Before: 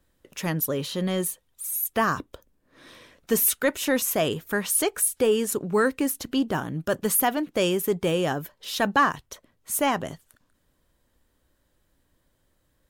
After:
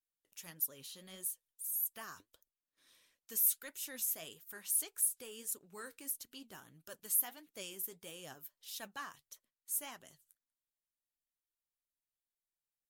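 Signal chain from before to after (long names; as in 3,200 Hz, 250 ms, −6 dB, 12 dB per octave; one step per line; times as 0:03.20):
noise gate −55 dBFS, range −11 dB
first-order pre-emphasis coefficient 0.9
flanger 1.6 Hz, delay 2.1 ms, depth 9 ms, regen +59%
level −6.5 dB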